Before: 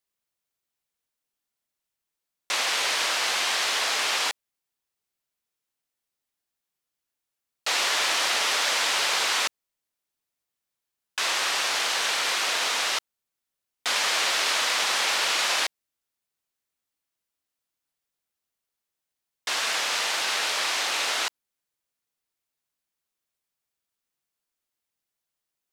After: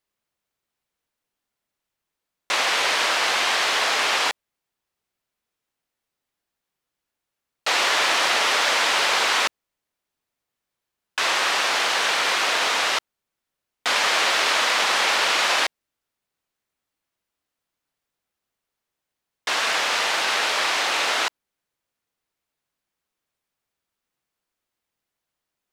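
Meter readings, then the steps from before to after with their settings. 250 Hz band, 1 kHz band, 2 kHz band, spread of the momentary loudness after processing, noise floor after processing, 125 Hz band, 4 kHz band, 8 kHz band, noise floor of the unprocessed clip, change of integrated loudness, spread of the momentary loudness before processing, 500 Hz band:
+7.0 dB, +6.5 dB, +5.0 dB, 7 LU, -84 dBFS, n/a, +2.5 dB, 0.0 dB, under -85 dBFS, +3.5 dB, 7 LU, +7.0 dB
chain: high shelf 3800 Hz -9 dB; gain +7 dB

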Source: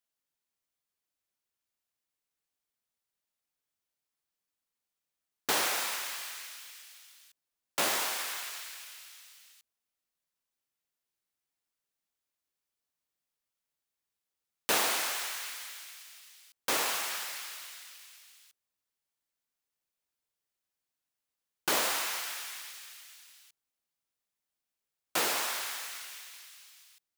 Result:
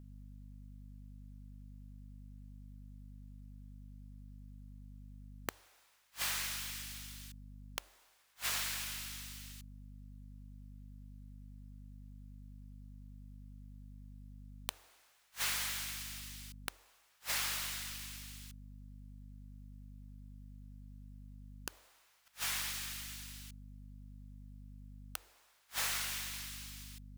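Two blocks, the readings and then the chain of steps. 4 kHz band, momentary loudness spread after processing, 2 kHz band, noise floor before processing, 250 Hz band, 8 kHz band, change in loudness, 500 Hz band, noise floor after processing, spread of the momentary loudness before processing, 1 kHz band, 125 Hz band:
-6.0 dB, 20 LU, -7.0 dB, under -85 dBFS, -4.0 dB, -6.0 dB, -8.0 dB, -17.0 dB, -69 dBFS, 21 LU, -12.0 dB, +13.0 dB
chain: hum 50 Hz, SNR 17 dB; flipped gate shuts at -26 dBFS, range -41 dB; de-hum 46.29 Hz, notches 2; gain +5.5 dB

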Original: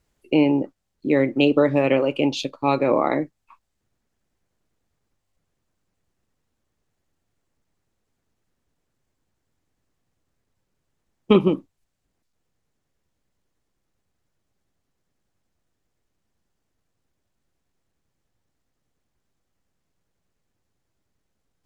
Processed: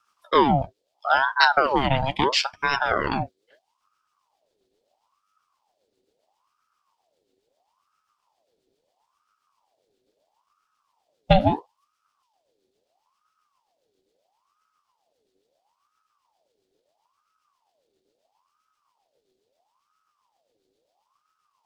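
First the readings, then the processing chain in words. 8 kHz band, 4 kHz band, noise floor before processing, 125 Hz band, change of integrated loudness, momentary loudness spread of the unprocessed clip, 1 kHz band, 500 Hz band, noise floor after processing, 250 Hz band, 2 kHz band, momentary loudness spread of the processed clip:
n/a, +5.5 dB, -77 dBFS, +1.0 dB, -1.0 dB, 9 LU, +7.0 dB, -5.0 dB, -76 dBFS, -8.0 dB, +7.5 dB, 12 LU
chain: rotary speaker horn 7.5 Hz; fifteen-band EQ 100 Hz +7 dB, 630 Hz -10 dB, 1600 Hz -5 dB, 4000 Hz +11 dB; ring modulator with a swept carrier 830 Hz, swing 55%, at 0.75 Hz; gain +4.5 dB

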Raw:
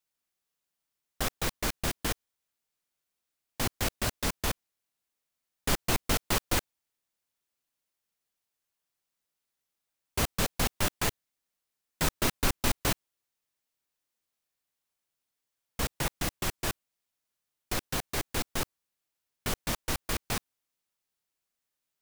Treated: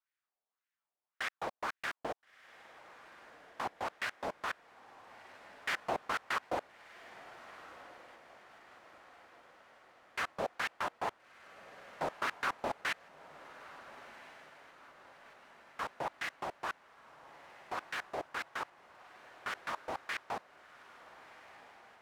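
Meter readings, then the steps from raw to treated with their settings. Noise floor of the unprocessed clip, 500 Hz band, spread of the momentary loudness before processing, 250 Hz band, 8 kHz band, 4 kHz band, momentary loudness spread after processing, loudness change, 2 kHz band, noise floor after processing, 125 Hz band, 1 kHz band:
under -85 dBFS, -4.5 dB, 7 LU, -14.0 dB, -20.0 dB, -11.5 dB, 21 LU, -8.0 dB, -2.0 dB, under -85 dBFS, -22.0 dB, -0.5 dB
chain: wah 1.8 Hz 650–1900 Hz, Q 2.4; diffused feedback echo 1.386 s, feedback 56%, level -15.5 dB; gain +3.5 dB

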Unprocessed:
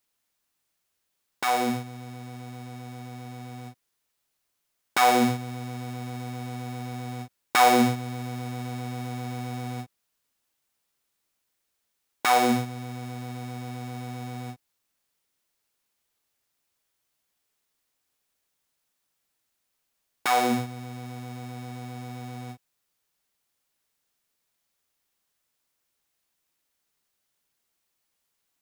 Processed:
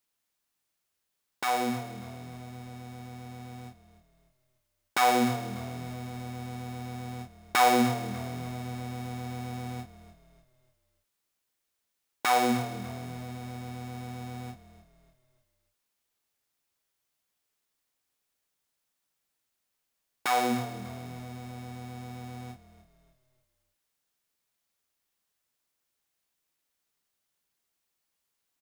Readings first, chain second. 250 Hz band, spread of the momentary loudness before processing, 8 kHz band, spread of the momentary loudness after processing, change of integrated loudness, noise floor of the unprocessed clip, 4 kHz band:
-3.5 dB, 20 LU, -3.5 dB, 19 LU, -4.0 dB, -78 dBFS, -3.5 dB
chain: frequency-shifting echo 0.296 s, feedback 40%, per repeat -38 Hz, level -15.5 dB; gain -3.5 dB

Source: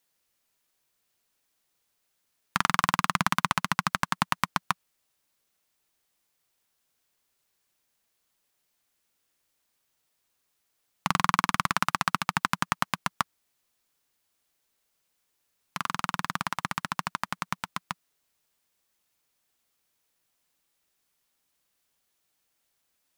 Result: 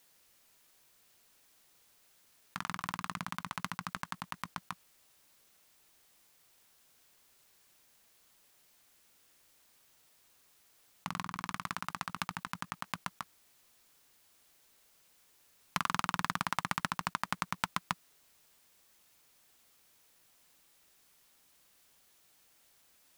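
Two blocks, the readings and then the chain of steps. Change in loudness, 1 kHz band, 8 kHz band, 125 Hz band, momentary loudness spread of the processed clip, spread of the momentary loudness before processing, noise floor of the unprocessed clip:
-9.5 dB, -9.5 dB, -9.0 dB, -9.0 dB, 10 LU, 9 LU, -77 dBFS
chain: negative-ratio compressor -36 dBFS, ratio -1

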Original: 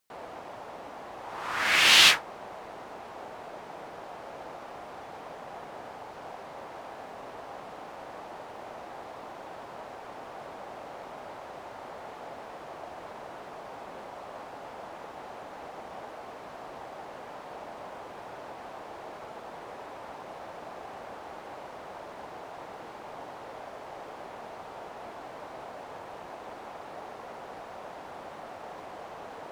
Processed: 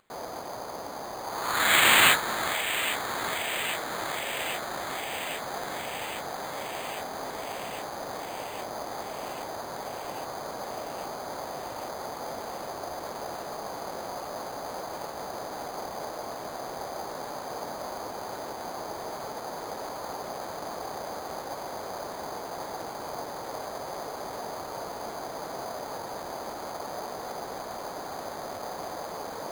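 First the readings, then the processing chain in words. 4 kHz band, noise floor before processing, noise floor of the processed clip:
-2.5 dB, -45 dBFS, -39 dBFS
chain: upward compressor, threshold -54 dBFS; running mean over 7 samples; echo with dull and thin repeats by turns 0.406 s, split 1600 Hz, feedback 87%, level -8 dB; careless resampling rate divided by 8×, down filtered, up hold; gain +5 dB

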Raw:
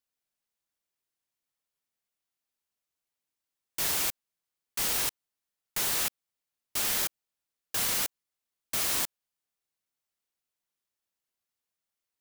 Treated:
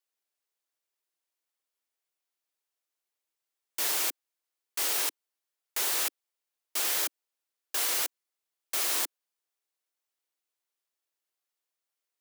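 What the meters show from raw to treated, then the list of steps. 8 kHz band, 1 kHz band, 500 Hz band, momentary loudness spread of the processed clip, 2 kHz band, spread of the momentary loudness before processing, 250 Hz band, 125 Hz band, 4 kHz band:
0.0 dB, 0.0 dB, 0.0 dB, 8 LU, 0.0 dB, 8 LU, -5.0 dB, under -35 dB, 0.0 dB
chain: steep high-pass 300 Hz 48 dB/oct

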